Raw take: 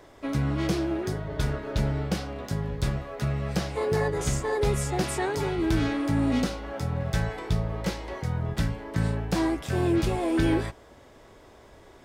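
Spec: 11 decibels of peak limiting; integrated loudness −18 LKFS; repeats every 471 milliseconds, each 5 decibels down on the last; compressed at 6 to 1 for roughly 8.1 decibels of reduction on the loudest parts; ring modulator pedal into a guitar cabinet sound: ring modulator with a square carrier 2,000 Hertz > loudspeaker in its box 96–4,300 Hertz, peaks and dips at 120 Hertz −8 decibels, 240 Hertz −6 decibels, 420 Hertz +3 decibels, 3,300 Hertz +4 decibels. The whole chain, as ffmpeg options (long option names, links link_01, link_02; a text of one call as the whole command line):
ffmpeg -i in.wav -af "acompressor=threshold=-29dB:ratio=6,alimiter=level_in=6dB:limit=-24dB:level=0:latency=1,volume=-6dB,aecho=1:1:471|942|1413|1884|2355|2826|3297:0.562|0.315|0.176|0.0988|0.0553|0.031|0.0173,aeval=exprs='val(0)*sgn(sin(2*PI*2000*n/s))':channel_layout=same,highpass=96,equalizer=frequency=120:width_type=q:width=4:gain=-8,equalizer=frequency=240:width_type=q:width=4:gain=-6,equalizer=frequency=420:width_type=q:width=4:gain=3,equalizer=frequency=3300:width_type=q:width=4:gain=4,lowpass=frequency=4300:width=0.5412,lowpass=frequency=4300:width=1.3066,volume=16.5dB" out.wav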